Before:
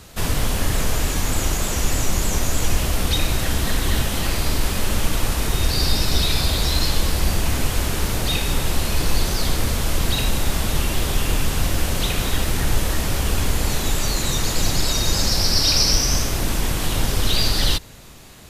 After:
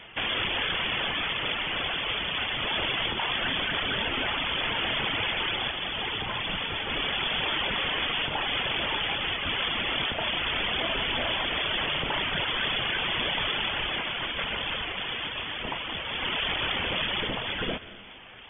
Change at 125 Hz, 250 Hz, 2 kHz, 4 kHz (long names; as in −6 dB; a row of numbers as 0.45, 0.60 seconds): −18.0, −11.0, +1.5, −2.5 decibels